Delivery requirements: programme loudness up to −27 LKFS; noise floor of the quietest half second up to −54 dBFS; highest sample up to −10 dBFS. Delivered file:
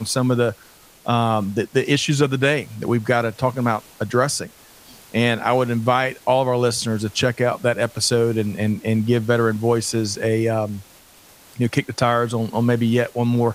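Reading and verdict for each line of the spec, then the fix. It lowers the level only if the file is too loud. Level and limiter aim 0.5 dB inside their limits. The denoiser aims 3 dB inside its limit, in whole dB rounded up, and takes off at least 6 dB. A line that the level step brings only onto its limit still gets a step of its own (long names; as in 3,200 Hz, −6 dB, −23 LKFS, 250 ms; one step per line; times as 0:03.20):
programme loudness −20.5 LKFS: out of spec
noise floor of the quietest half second −49 dBFS: out of spec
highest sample −3.5 dBFS: out of spec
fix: level −7 dB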